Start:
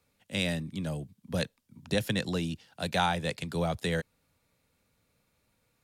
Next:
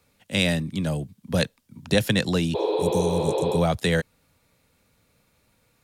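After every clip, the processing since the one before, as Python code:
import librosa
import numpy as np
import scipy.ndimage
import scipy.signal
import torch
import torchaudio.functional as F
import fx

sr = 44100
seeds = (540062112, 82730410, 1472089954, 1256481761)

y = fx.spec_repair(x, sr, seeds[0], start_s=2.57, length_s=0.98, low_hz=310.0, high_hz=5200.0, source='after')
y = F.gain(torch.from_numpy(y), 8.0).numpy()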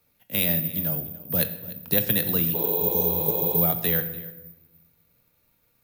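y = x + 10.0 ** (-18.5 / 20.0) * np.pad(x, (int(294 * sr / 1000.0), 0))[:len(x)]
y = fx.room_shoebox(y, sr, seeds[1], volume_m3=430.0, walls='mixed', distance_m=0.47)
y = (np.kron(scipy.signal.resample_poly(y, 1, 3), np.eye(3)[0]) * 3)[:len(y)]
y = F.gain(torch.from_numpy(y), -6.5).numpy()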